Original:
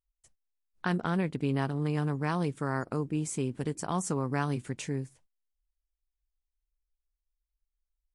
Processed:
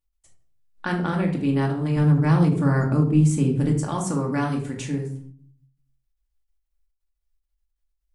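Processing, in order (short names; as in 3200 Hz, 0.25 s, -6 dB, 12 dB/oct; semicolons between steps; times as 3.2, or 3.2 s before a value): 1.96–3.81 low shelf 280 Hz +10 dB; shoebox room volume 810 m³, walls furnished, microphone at 2.4 m; ending taper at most 130 dB/s; gain +2 dB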